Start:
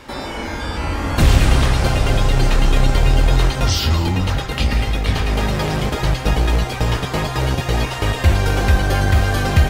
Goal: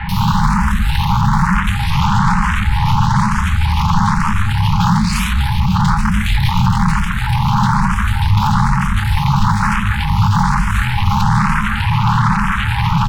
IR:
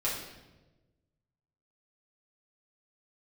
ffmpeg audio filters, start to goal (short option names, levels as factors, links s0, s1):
-filter_complex "[0:a]aeval=exprs='val(0)+0.5*0.0422*sgn(val(0))':c=same,asetrate=32667,aresample=44100,afwtdn=0.126,asplit=2[s0][s1];[1:a]atrim=start_sample=2205,asetrate=57330,aresample=44100[s2];[s1][s2]afir=irnorm=-1:irlink=0,volume=0.0891[s3];[s0][s3]amix=inputs=2:normalize=0,acrossover=split=160|470[s4][s5][s6];[s4]acompressor=threshold=0.0562:ratio=4[s7];[s5]acompressor=threshold=0.0251:ratio=4[s8];[s6]acompressor=threshold=0.0178:ratio=4[s9];[s7][s8][s9]amix=inputs=3:normalize=0,aeval=exprs='0.251*sin(PI/2*6.31*val(0)/0.251)':c=same,asetrate=46722,aresample=44100,atempo=0.943874,acrossover=split=2000[s10][s11];[s11]adelay=90[s12];[s10][s12]amix=inputs=2:normalize=0,afftfilt=real='re*(1-between(b*sr/4096,220,800))':imag='im*(1-between(b*sr/4096,220,800))':win_size=4096:overlap=0.75,alimiter=level_in=6.31:limit=0.891:release=50:level=0:latency=1,asplit=2[s13][s14];[s14]afreqshift=1.1[s15];[s13][s15]amix=inputs=2:normalize=1,volume=0.708"